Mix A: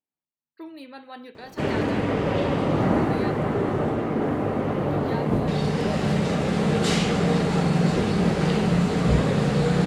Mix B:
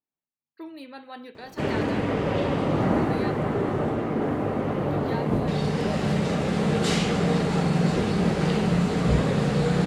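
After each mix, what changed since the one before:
reverb: off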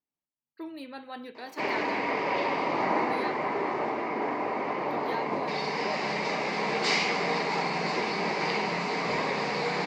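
background: add cabinet simulation 440–6100 Hz, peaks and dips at 520 Hz -5 dB, 970 Hz +8 dB, 1.4 kHz -6 dB, 2.2 kHz +10 dB, 3.3 kHz -6 dB, 4.8 kHz +7 dB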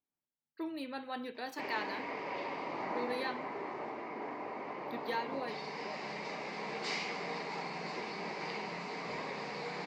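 background -11.5 dB

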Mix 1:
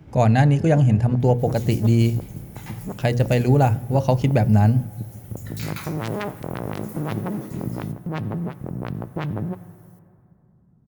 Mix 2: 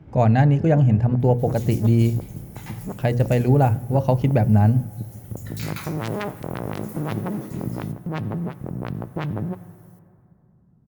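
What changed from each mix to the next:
speech: add low-pass 1.9 kHz 6 dB/octave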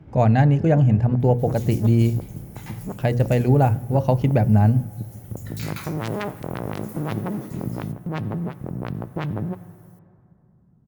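second sound: send off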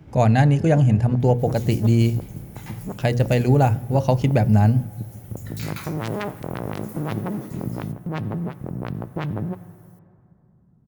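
speech: remove low-pass 1.9 kHz 6 dB/octave

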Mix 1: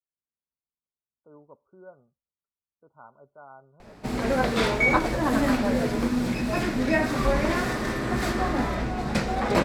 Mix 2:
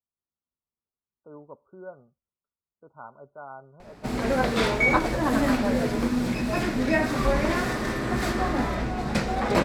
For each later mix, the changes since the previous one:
speech +6.0 dB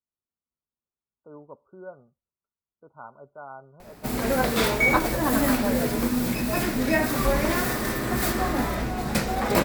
master: remove distance through air 71 m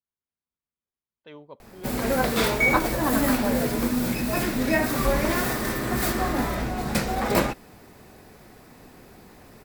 speech: remove brick-wall FIR low-pass 1.5 kHz; background: entry -2.20 s

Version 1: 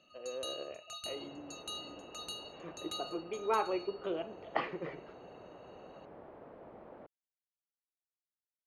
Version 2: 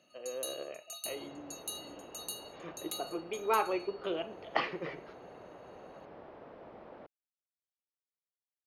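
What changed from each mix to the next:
first sound -11.0 dB; master: remove tape spacing loss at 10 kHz 24 dB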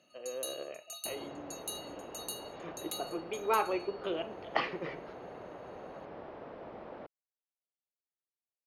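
second sound +4.5 dB

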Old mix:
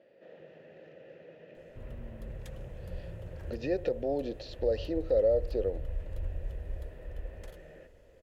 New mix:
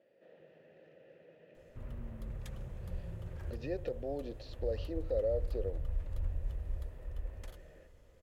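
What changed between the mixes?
speech -7.5 dB; background: remove band-stop 1.2 kHz, Q 15

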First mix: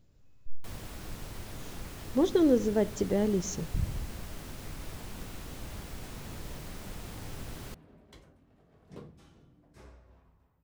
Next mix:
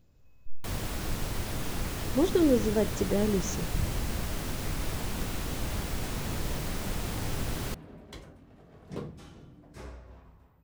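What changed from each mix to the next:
first sound +9.0 dB; second sound +9.0 dB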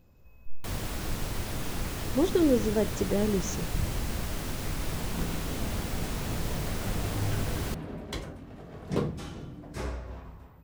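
second sound +9.5 dB

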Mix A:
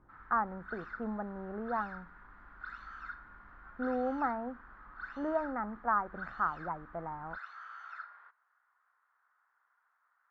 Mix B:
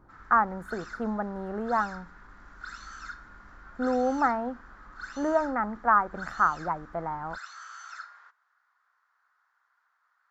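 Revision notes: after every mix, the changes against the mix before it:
speech +6.0 dB; master: remove distance through air 470 m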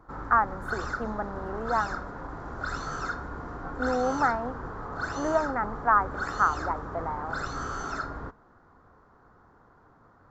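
speech: add peaking EQ 150 Hz -13.5 dB 0.82 oct; background: remove ladder high-pass 1.3 kHz, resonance 25%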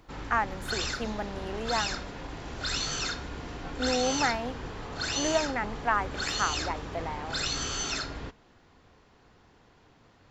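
master: add resonant high shelf 1.9 kHz +12.5 dB, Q 3

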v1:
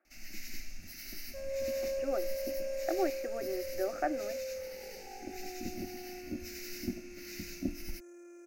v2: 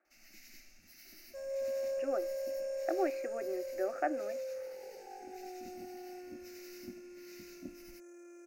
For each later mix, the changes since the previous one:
first sound -10.0 dB; master: add bass shelf 130 Hz -11 dB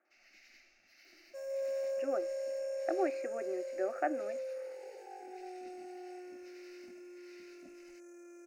first sound: add three-band isolator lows -18 dB, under 410 Hz, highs -23 dB, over 4.8 kHz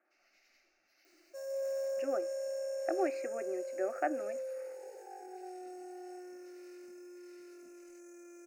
first sound -10.5 dB; master: add treble shelf 5.9 kHz +7.5 dB

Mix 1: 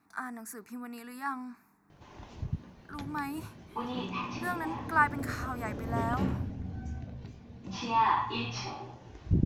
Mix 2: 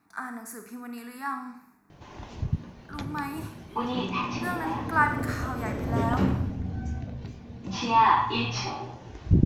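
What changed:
background +6.0 dB; reverb: on, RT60 0.65 s

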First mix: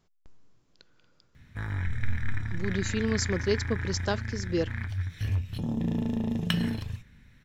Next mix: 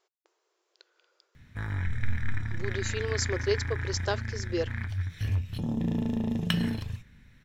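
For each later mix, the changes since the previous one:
speech: add brick-wall FIR high-pass 330 Hz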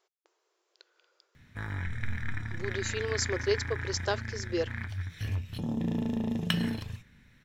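master: add bass shelf 110 Hz -7.5 dB

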